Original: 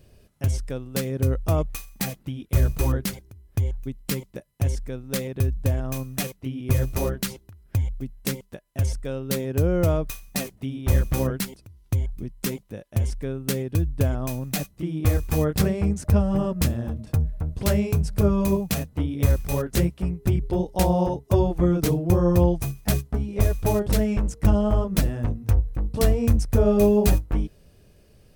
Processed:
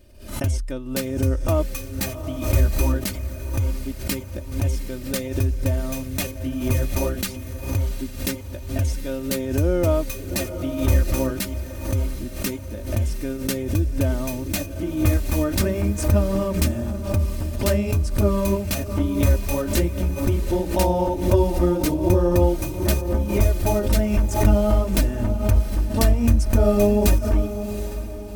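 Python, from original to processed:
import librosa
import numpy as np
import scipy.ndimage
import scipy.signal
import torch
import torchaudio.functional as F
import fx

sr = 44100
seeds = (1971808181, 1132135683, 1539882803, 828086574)

p1 = x + 0.7 * np.pad(x, (int(3.3 * sr / 1000.0), 0))[:len(x)]
p2 = p1 + fx.echo_diffused(p1, sr, ms=750, feedback_pct=43, wet_db=-11, dry=0)
y = fx.pre_swell(p2, sr, db_per_s=91.0)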